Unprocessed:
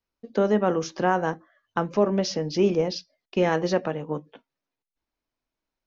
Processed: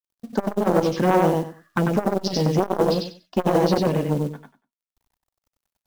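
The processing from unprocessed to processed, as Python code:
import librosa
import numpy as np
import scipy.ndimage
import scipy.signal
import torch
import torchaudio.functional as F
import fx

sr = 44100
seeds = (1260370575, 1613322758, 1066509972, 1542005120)

p1 = fx.low_shelf(x, sr, hz=410.0, db=5.0)
p2 = fx.env_phaser(p1, sr, low_hz=360.0, high_hz=2100.0, full_db=-16.0)
p3 = fx.fold_sine(p2, sr, drive_db=8, ceiling_db=-7.5)
p4 = p2 + F.gain(torch.from_numpy(p3), -9.0).numpy()
p5 = fx.quant_companded(p4, sr, bits=6)
p6 = p5 + fx.echo_feedback(p5, sr, ms=95, feedback_pct=20, wet_db=-3, dry=0)
y = fx.transformer_sat(p6, sr, knee_hz=580.0)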